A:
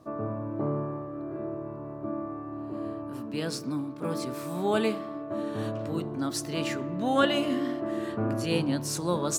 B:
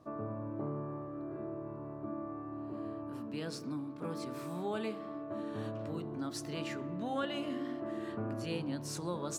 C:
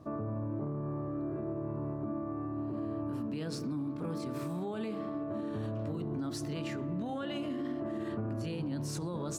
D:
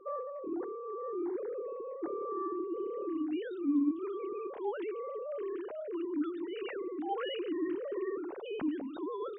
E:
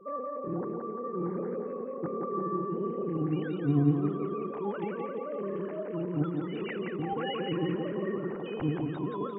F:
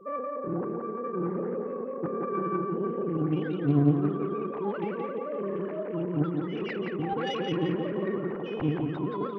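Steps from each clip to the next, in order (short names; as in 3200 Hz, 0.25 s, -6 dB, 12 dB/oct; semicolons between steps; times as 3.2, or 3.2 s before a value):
high shelf 6500 Hz -7 dB; de-hum 64.57 Hz, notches 12; compressor 2:1, threshold -33 dBFS, peak gain reduction 9 dB; gain -4.5 dB
low shelf 300 Hz +9 dB; limiter -32 dBFS, peak gain reduction 11.5 dB; gain +3 dB
sine-wave speech
octaver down 1 oct, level +3 dB; thinning echo 0.173 s, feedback 53%, high-pass 190 Hz, level -3 dB; LFO bell 5 Hz 720–2100 Hz +6 dB
self-modulated delay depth 0.17 ms; gain +2.5 dB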